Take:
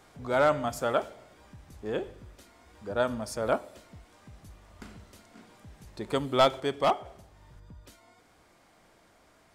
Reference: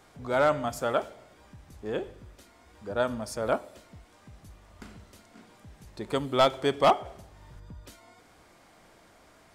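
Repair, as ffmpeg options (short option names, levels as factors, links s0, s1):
-af "asetnsamples=n=441:p=0,asendcmd='6.6 volume volume 4dB',volume=1"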